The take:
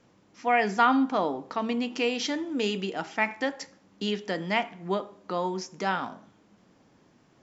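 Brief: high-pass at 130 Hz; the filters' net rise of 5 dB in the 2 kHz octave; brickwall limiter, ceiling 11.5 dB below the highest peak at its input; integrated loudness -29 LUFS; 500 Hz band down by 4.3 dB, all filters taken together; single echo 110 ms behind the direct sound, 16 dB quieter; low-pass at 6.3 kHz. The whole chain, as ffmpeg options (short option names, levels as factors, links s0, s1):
-af "highpass=130,lowpass=6300,equalizer=f=500:t=o:g=-6,equalizer=f=2000:t=o:g=6.5,alimiter=limit=0.112:level=0:latency=1,aecho=1:1:110:0.158,volume=1.26"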